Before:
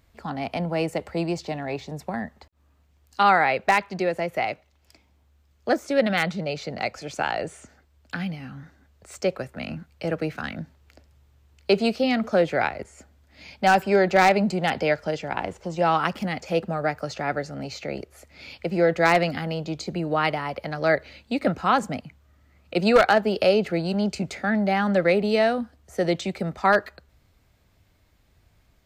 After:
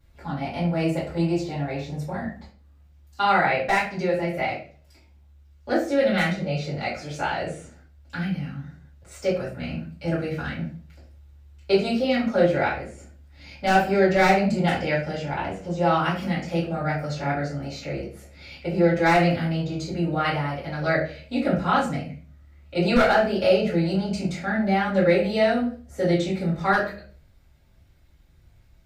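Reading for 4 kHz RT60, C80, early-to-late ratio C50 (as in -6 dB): 0.35 s, 11.0 dB, 6.0 dB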